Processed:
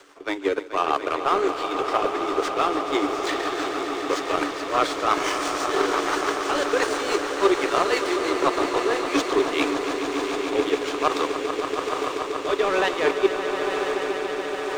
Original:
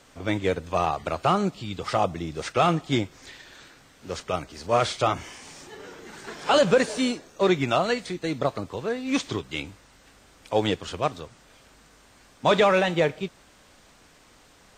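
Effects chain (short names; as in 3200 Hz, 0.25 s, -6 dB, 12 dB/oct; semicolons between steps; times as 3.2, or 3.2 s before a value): median filter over 3 samples; reverse; compressor 16:1, threshold -36 dBFS, peak gain reduction 23 dB; reverse; rippled Chebyshev high-pass 280 Hz, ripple 9 dB; on a send: diffused feedback echo 0.994 s, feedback 76%, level -8 dB; on the sum: power-law curve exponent 1.4; rotary speaker horn 6 Hz, later 1.1 Hz, at 9.4; swelling echo 0.143 s, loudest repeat 5, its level -12 dB; maximiser +35.5 dB; gain -5.5 dB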